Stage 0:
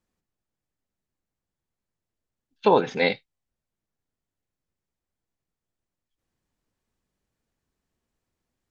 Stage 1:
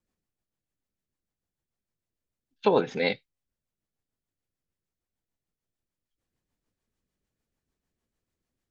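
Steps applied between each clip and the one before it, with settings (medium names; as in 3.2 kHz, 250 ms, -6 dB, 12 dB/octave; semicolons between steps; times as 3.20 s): rotary cabinet horn 6.7 Hz; trim -1 dB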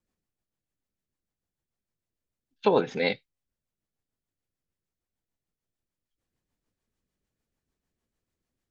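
no audible change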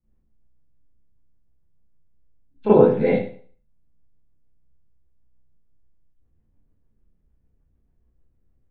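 low-pass 4.9 kHz; tilt EQ -4.5 dB/octave; reverberation RT60 0.45 s, pre-delay 32 ms, DRR -11 dB; trim -9 dB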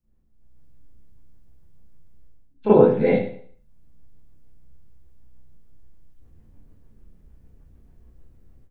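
level rider gain up to 15 dB; trim -1 dB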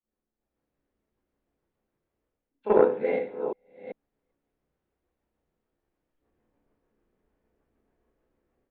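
chunks repeated in reverse 392 ms, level -9 dB; three-band isolator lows -22 dB, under 300 Hz, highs -14 dB, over 3.1 kHz; Chebyshev shaper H 3 -18 dB, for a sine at -3.5 dBFS; trim -2 dB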